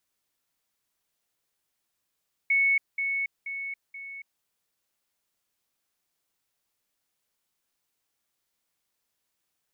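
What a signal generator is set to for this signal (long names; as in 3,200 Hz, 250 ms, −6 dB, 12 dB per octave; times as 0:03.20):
level staircase 2,210 Hz −19.5 dBFS, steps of −6 dB, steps 4, 0.28 s 0.20 s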